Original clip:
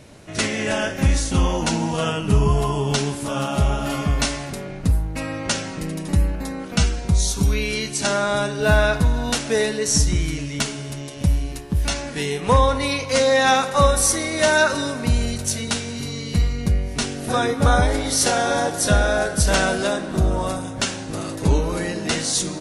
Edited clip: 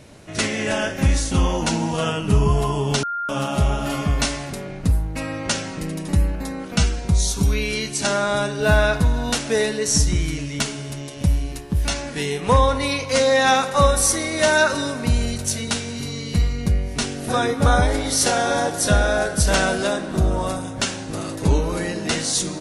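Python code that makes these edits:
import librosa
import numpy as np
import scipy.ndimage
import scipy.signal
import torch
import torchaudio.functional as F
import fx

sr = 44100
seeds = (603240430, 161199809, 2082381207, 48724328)

y = fx.edit(x, sr, fx.bleep(start_s=3.03, length_s=0.26, hz=1400.0, db=-23.0), tone=tone)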